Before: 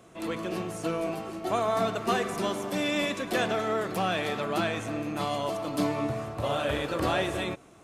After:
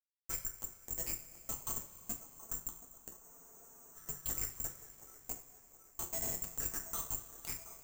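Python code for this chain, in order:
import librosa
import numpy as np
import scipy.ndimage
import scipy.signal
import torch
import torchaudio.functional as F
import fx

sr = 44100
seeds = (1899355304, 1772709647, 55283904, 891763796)

p1 = fx.spec_dropout(x, sr, seeds[0], share_pct=57)
p2 = F.preemphasis(torch.from_numpy(p1), 0.97).numpy()
p3 = p2 + 0.66 * np.pad(p2, (int(6.0 * sr / 1000.0), 0))[:len(p2)]
p4 = fx.dynamic_eq(p3, sr, hz=5000.0, q=0.81, threshold_db=-58.0, ratio=4.0, max_db=-6)
p5 = fx.over_compress(p4, sr, threshold_db=-50.0, ratio=-0.5)
p6 = p4 + (p5 * librosa.db_to_amplitude(2.5))
p7 = fx.filter_lfo_bandpass(p6, sr, shape='saw_down', hz=0.94, low_hz=630.0, high_hz=2400.0, q=5.4)
p8 = fx.harmonic_tremolo(p7, sr, hz=1.3, depth_pct=100, crossover_hz=1300.0)
p9 = fx.schmitt(p8, sr, flips_db=-52.0)
p10 = fx.echo_wet_bandpass(p9, sr, ms=724, feedback_pct=49, hz=650.0, wet_db=-12.0)
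p11 = fx.rev_double_slope(p10, sr, seeds[1], early_s=0.34, late_s=4.2, knee_db=-19, drr_db=1.0)
p12 = (np.kron(scipy.signal.resample_poly(p11, 1, 6), np.eye(6)[0]) * 6)[:len(p11)]
p13 = fx.spec_freeze(p12, sr, seeds[2], at_s=3.25, hold_s=0.71)
y = p13 * librosa.db_to_amplitude(13.5)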